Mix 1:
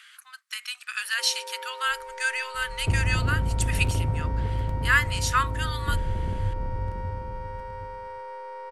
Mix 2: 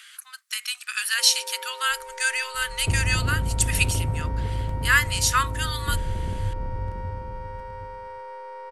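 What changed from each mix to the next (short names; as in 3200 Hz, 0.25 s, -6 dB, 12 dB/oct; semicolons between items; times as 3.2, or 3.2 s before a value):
speech: add high shelf 3800 Hz +10.5 dB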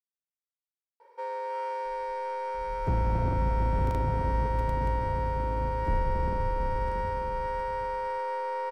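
speech: muted; first sound +6.5 dB; second sound: add bell 98 Hz -13 dB 0.25 oct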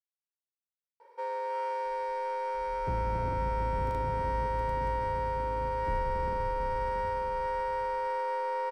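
second sound -7.0 dB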